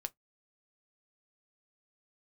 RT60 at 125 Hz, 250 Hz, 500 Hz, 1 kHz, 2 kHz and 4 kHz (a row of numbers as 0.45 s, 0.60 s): 0.15 s, 0.15 s, 0.10 s, 0.10 s, 0.10 s, 0.10 s